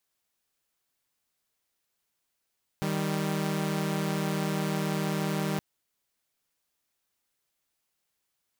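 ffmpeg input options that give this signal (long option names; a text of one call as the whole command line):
ffmpeg -f lavfi -i "aevalsrc='0.0422*((2*mod(155.56*t,1)-1)+(2*mod(196*t,1)-1))':duration=2.77:sample_rate=44100" out.wav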